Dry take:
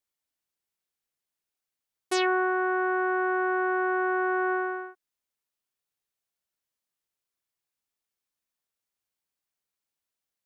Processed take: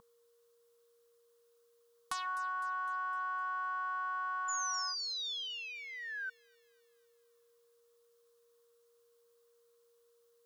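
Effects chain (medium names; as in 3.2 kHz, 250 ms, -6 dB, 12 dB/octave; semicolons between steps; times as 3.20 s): in parallel at -8 dB: saturation -31 dBFS, distortion -7 dB; on the sum: whistle 470 Hz -47 dBFS; compression 16:1, threshold -40 dBFS, peak gain reduction 20.5 dB; painted sound fall, 4.48–6.30 s, 1.5–7.1 kHz -45 dBFS; FFT filter 220 Hz 0 dB, 380 Hz -29 dB, 1.1 kHz +14 dB, 2.2 kHz -2 dB, 3.5 kHz +6 dB; on a send: feedback echo behind a high-pass 254 ms, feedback 52%, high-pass 5.5 kHz, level -10.5 dB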